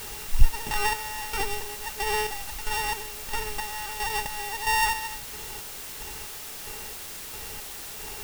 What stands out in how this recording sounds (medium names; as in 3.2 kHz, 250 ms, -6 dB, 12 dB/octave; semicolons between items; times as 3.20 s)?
a buzz of ramps at a fixed pitch in blocks of 16 samples; chopped level 1.5 Hz, depth 65%, duty 40%; a quantiser's noise floor 8-bit, dither triangular